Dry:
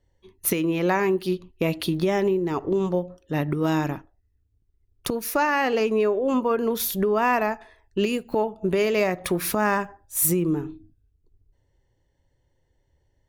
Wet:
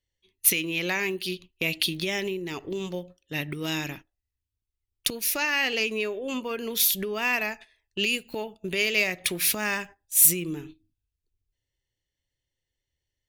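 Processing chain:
high shelf with overshoot 1,700 Hz +13.5 dB, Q 1.5
noise gate −35 dBFS, range −10 dB
level −8.5 dB

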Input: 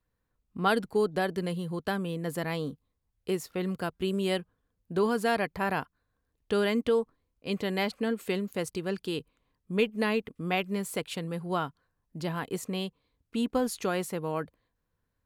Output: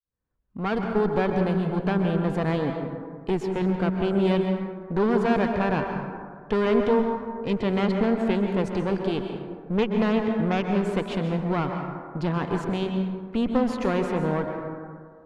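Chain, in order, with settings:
fade in at the beginning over 1.22 s
in parallel at −1 dB: brickwall limiter −25.5 dBFS, peak gain reduction 11.5 dB
on the sum: asymmetric clip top −34.5 dBFS
head-to-tape spacing loss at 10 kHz 25 dB
dense smooth reverb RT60 1.9 s, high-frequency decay 0.35×, pre-delay 115 ms, DRR 3.5 dB
level +5 dB

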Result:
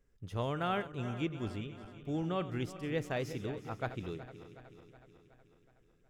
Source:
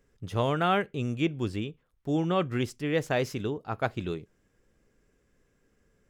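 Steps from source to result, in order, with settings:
feedback delay that plays each chunk backwards 185 ms, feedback 75%, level −13 dB
low-shelf EQ 67 Hz +9.5 dB
level −9 dB

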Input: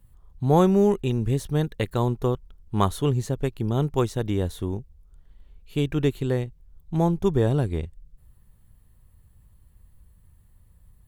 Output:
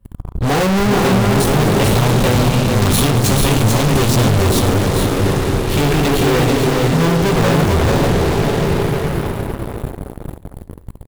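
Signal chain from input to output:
coupled-rooms reverb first 0.23 s, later 5 s, from −20 dB, DRR −4.5 dB
leveller curve on the samples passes 5
gain on a spectral selection 0:01.91–0:04.46, 320–2,300 Hz −9 dB
hard clipping −22 dBFS, distortion −5 dB
multi-tap delay 68/442/501 ms −17.5/−3.5/−19.5 dB
one half of a high-frequency compander decoder only
level +8 dB

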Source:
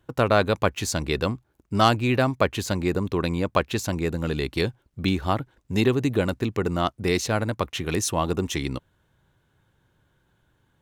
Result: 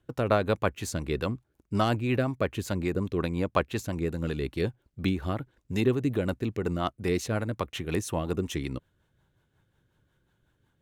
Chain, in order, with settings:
dynamic equaliser 5,000 Hz, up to −6 dB, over −44 dBFS, Q 1
rotating-speaker cabinet horn 5.5 Hz
level −2.5 dB

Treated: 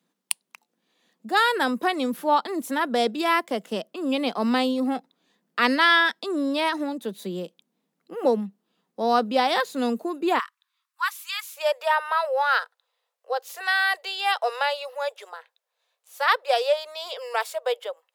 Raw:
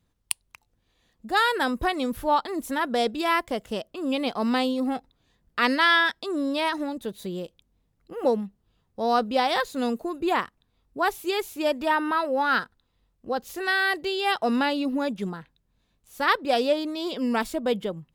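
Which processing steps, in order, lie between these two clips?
Butterworth high-pass 170 Hz 72 dB per octave, from 0:10.38 1,000 Hz, from 0:11.56 470 Hz
level +1.5 dB

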